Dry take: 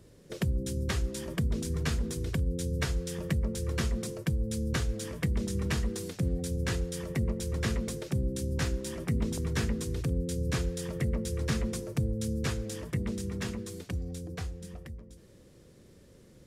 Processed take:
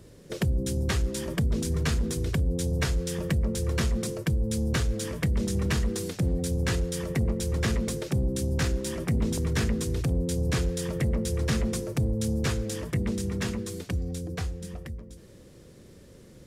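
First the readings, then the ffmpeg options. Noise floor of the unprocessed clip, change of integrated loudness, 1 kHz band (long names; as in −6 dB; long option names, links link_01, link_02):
−56 dBFS, +4.0 dB, +4.0 dB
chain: -af "asoftclip=type=tanh:threshold=-23dB,volume=5.5dB"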